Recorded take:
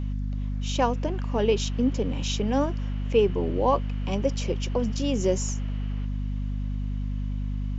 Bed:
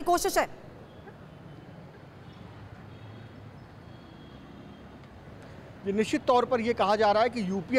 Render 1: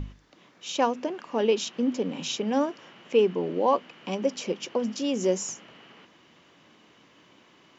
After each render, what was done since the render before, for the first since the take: hum notches 50/100/150/200/250 Hz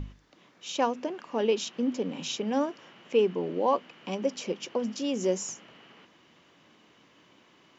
trim -2.5 dB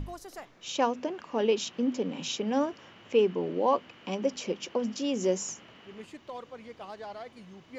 add bed -18.5 dB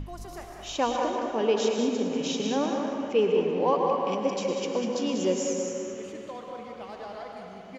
feedback delay 195 ms, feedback 38%, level -7.5 dB; plate-style reverb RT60 2.4 s, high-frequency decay 0.45×, pre-delay 90 ms, DRR 2 dB

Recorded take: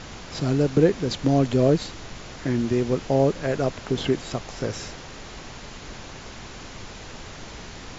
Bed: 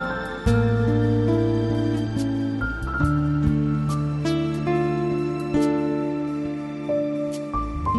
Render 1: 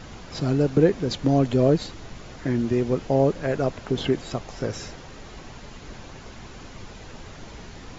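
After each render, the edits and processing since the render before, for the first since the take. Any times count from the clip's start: noise reduction 6 dB, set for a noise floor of -40 dBFS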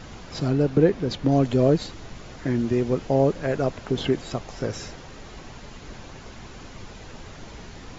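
0.48–1.32 s: distance through air 72 m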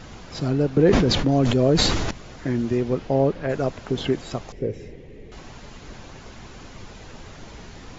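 0.71–2.11 s: decay stretcher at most 24 dB/s; 2.77–3.48 s: low-pass 6.7 kHz -> 3.7 kHz; 4.52–5.32 s: FFT filter 280 Hz 0 dB, 450 Hz +6 dB, 650 Hz -10 dB, 920 Hz -16 dB, 1.4 kHz -22 dB, 2 kHz -4 dB, 4.8 kHz -19 dB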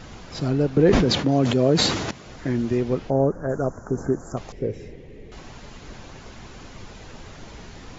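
1.05–2.27 s: high-pass 110 Hz; 3.10–4.37 s: elliptic band-stop 1.5–6.2 kHz, stop band 60 dB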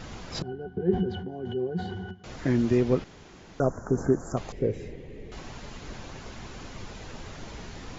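0.42–2.24 s: pitch-class resonator F#, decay 0.13 s; 3.04–3.60 s: room tone; 4.40–5.18 s: band-stop 5.5 kHz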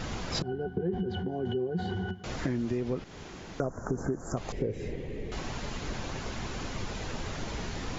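in parallel at -2 dB: peak limiter -20.5 dBFS, peak gain reduction 10 dB; on the sum: compression 6:1, threshold -28 dBFS, peak gain reduction 13 dB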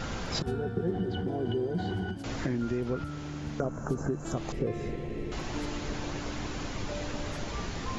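add bed -17.5 dB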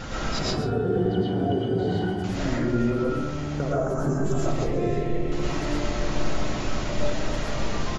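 delay 134 ms -13.5 dB; algorithmic reverb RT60 0.8 s, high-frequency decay 0.3×, pre-delay 75 ms, DRR -6 dB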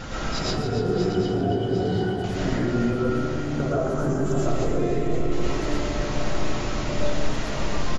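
backward echo that repeats 376 ms, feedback 66%, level -9.5 dB; delay 285 ms -10.5 dB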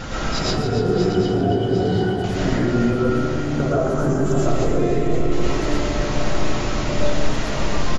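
trim +4.5 dB

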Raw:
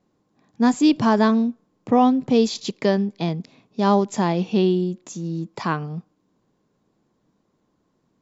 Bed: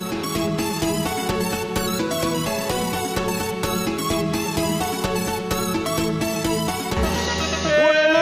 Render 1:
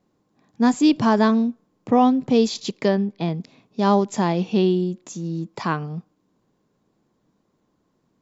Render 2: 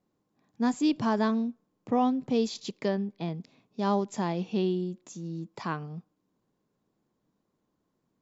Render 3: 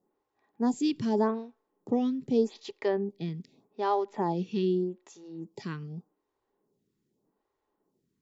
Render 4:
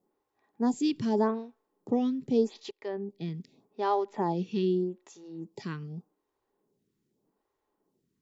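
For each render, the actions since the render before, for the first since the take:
2.88–3.34 s: distance through air 130 m
trim -9 dB
small resonant body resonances 400/840/1900 Hz, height 9 dB; lamp-driven phase shifter 0.83 Hz
2.71–3.35 s: fade in, from -15.5 dB

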